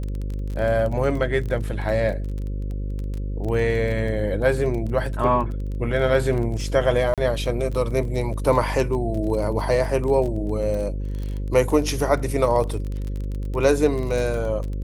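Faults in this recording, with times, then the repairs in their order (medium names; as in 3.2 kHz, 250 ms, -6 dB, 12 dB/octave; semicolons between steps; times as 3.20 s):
buzz 50 Hz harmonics 11 -27 dBFS
crackle 22 per s -28 dBFS
7.14–7.18 s: dropout 37 ms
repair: de-click; de-hum 50 Hz, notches 11; interpolate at 7.14 s, 37 ms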